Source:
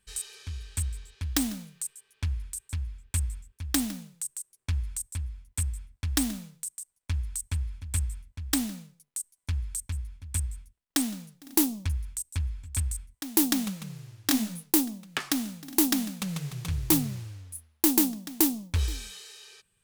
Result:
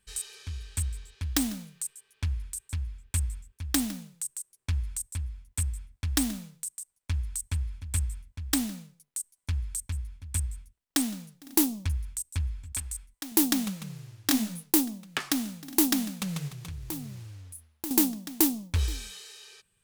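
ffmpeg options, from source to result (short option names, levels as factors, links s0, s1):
-filter_complex "[0:a]asettb=1/sr,asplit=3[s0][s1][s2];[s0]atrim=end=12.724[s3];[s1]atrim=start=12.72:end=13.32,asetpts=PTS-STARTPTS,afade=t=in:d=0.004:c=qsin,afade=t=out:st=0.596:d=0.004:c=qsin,equalizer=f=95:t=o:w=1.9:g=-13[s4];[s2]atrim=start=13.316[s5];[s3][s4]acrossfade=d=0.004:c1=hsin:c2=qsin[s6];[s6][s5]acrossfade=d=0.004:c1=qsin:c2=hsin,asettb=1/sr,asplit=3[s7][s8][s9];[s7]atrim=end=16.484[s10];[s8]atrim=start=16.48:end=17.91,asetpts=PTS-STARTPTS,afade=t=in:d=0.004:c=qsin,afade=t=out:st=1.426:d=0.004:c=qsin,acompressor=threshold=0.00794:ratio=2:attack=3.2:release=140:knee=1:detection=peak[s11];[s9]atrim=start=17.906[s12];[s10][s11]acrossfade=d=0.004:c1=hsin:c2=qsin[s13];[s13][s12]acrossfade=d=0.004:c1=qsin:c2=hsin"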